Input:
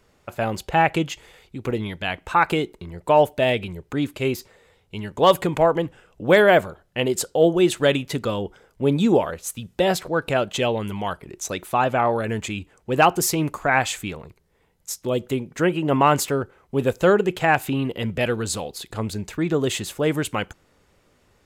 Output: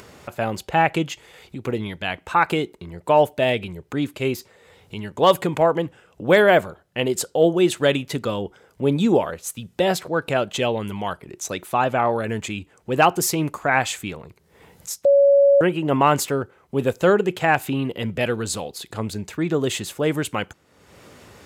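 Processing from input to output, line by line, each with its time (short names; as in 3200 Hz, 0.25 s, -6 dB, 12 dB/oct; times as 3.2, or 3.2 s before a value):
15.05–15.61 bleep 561 Hz -10.5 dBFS
whole clip: HPF 79 Hz; upward compressor, threshold -32 dBFS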